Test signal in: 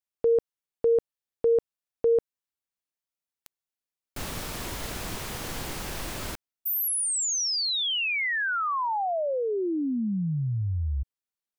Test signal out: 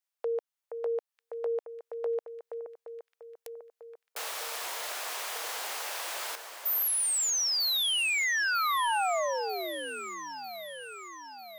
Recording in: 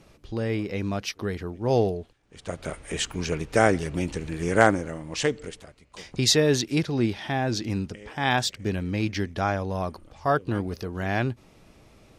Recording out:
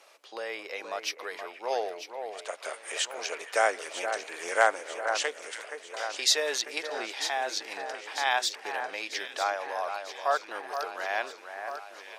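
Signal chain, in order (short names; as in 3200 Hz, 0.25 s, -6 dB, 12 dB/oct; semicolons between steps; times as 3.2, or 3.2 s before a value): HPF 580 Hz 24 dB/oct; in parallel at 0 dB: compressor, threshold -40 dBFS; on the sum: echo with dull and thin repeats by turns 0.473 s, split 2000 Hz, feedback 74%, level -7.5 dB; gain -3 dB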